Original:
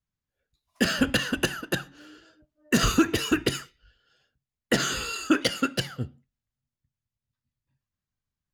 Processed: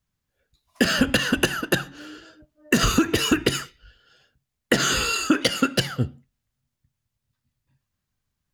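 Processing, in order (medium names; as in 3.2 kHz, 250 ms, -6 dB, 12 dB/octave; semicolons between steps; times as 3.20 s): compression 6:1, threshold -24 dBFS, peak gain reduction 9.5 dB; trim +8.5 dB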